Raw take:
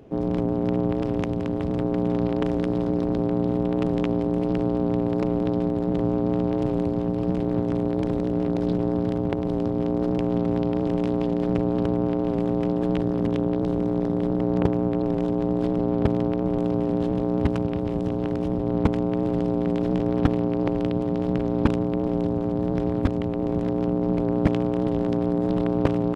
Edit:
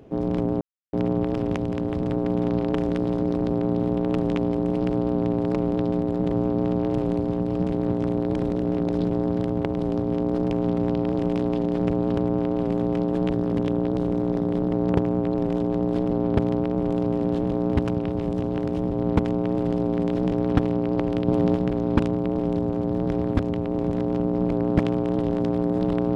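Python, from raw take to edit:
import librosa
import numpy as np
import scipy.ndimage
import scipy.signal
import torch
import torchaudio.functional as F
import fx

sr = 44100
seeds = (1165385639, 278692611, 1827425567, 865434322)

y = fx.edit(x, sr, fx.insert_silence(at_s=0.61, length_s=0.32),
    fx.clip_gain(start_s=20.96, length_s=0.28, db=4.5), tone=tone)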